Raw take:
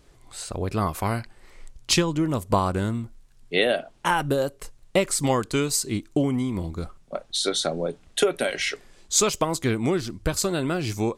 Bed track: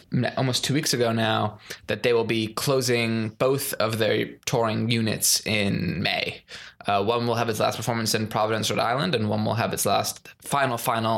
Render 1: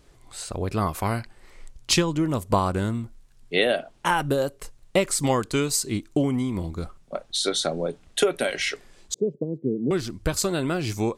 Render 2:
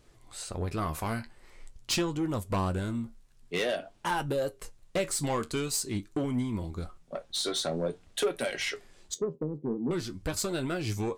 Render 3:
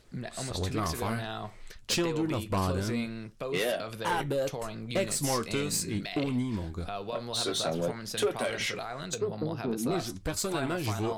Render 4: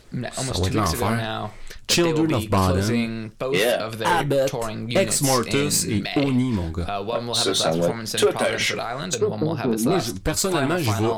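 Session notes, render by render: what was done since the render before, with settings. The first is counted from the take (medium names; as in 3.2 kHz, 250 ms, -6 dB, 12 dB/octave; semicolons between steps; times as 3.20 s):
9.14–9.91 s: elliptic band-pass 140–470 Hz, stop band 50 dB
saturation -19 dBFS, distortion -12 dB; flange 0.47 Hz, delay 8.3 ms, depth 5.4 ms, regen +58%
add bed track -14.5 dB
trim +9.5 dB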